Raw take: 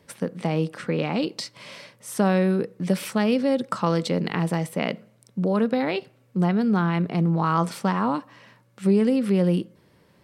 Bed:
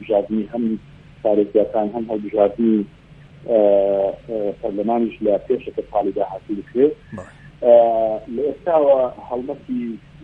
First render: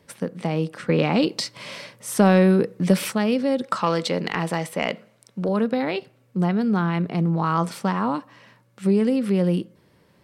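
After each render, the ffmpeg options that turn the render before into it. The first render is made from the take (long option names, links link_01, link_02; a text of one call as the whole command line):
ffmpeg -i in.wav -filter_complex "[0:a]asettb=1/sr,asplit=3[link_01][link_02][link_03];[link_01]atrim=end=0.894[link_04];[link_02]atrim=start=0.89:end=3.12,asetpts=PTS-STARTPTS,afade=type=in:duration=0.004:curve=qsin,afade=type=out:start_time=2.226:duration=0.004:curve=qsin,acontrast=32[link_05];[link_03]atrim=start=3.116[link_06];[link_04][link_05]acrossfade=duration=0.004:curve1=hsin:curve2=qsin[link_07];[link_07][link_06]acrossfade=duration=0.004:curve1=qsin:curve2=hsin,asettb=1/sr,asplit=3[link_08][link_09][link_10];[link_08]atrim=end=3.624[link_11];[link_09]atrim=start=3.62:end=5.49,asetpts=PTS-STARTPTS,afade=type=in:duration=0.004:curve=qsin,afade=type=out:start_time=1.866:duration=0.004:curve=qsin,asplit=2[link_12][link_13];[link_13]highpass=frequency=720:poles=1,volume=10dB,asoftclip=type=tanh:threshold=-8dB[link_14];[link_12][link_14]amix=inputs=2:normalize=0,lowpass=frequency=6600:poles=1,volume=-6dB[link_15];[link_10]atrim=start=5.486[link_16];[link_11][link_15]acrossfade=duration=0.004:curve1=hsin:curve2=qsin[link_17];[link_17][link_16]acrossfade=duration=0.004:curve1=qsin:curve2=hsin" out.wav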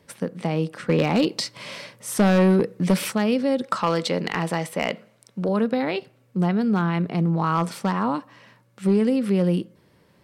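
ffmpeg -i in.wav -af "asoftclip=type=hard:threshold=-12dB" out.wav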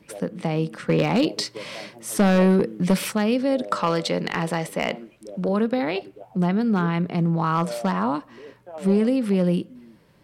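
ffmpeg -i in.wav -i bed.wav -filter_complex "[1:a]volume=-22dB[link_01];[0:a][link_01]amix=inputs=2:normalize=0" out.wav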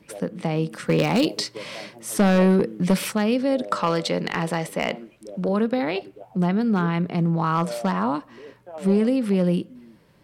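ffmpeg -i in.wav -filter_complex "[0:a]asettb=1/sr,asplit=3[link_01][link_02][link_03];[link_01]atrim=end=0.714[link_04];[link_02]atrim=start=0.71:end=1.38,asetpts=PTS-STARTPTS,afade=type=in:duration=0.004:curve=qsin,afade=type=out:start_time=0.666:duration=0.004:curve=qsin,highshelf=frequency=6500:gain=11.5[link_05];[link_03]atrim=start=1.376[link_06];[link_04][link_05]acrossfade=duration=0.004:curve1=hsin:curve2=qsin[link_07];[link_07][link_06]acrossfade=duration=0.004:curve1=qsin:curve2=hsin" out.wav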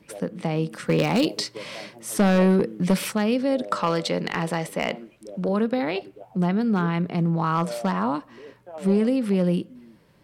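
ffmpeg -i in.wav -af "volume=-1dB" out.wav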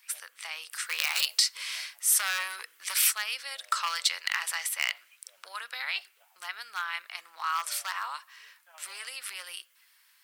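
ffmpeg -i in.wav -af "highpass=frequency=1300:width=0.5412,highpass=frequency=1300:width=1.3066,aemphasis=mode=production:type=50kf" out.wav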